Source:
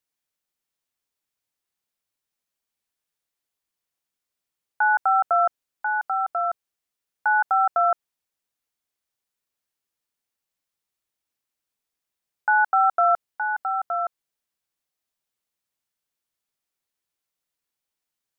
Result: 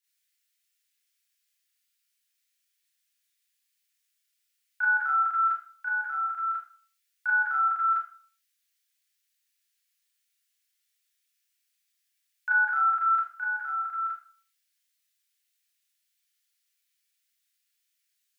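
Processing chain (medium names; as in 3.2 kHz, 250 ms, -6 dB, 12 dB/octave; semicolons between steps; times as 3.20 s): inverse Chebyshev high-pass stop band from 660 Hz, stop band 50 dB; Schroeder reverb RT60 0.42 s, combs from 27 ms, DRR -7.5 dB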